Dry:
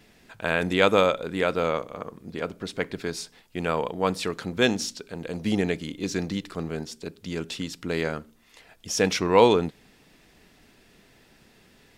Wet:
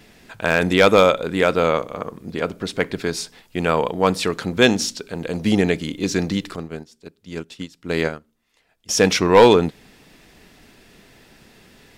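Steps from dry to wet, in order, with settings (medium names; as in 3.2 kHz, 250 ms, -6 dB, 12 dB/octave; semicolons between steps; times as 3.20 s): hard clipper -10.5 dBFS, distortion -18 dB; 6.56–8.89 s: upward expansion 2.5:1, over -37 dBFS; trim +7 dB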